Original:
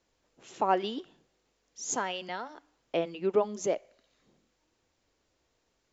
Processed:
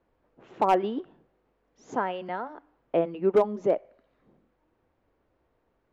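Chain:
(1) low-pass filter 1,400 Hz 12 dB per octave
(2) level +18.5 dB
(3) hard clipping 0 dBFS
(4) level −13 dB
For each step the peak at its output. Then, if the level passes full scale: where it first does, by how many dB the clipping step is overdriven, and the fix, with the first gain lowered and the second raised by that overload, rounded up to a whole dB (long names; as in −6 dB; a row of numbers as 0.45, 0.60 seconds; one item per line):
−13.5, +5.0, 0.0, −13.0 dBFS
step 2, 5.0 dB
step 2 +13.5 dB, step 4 −8 dB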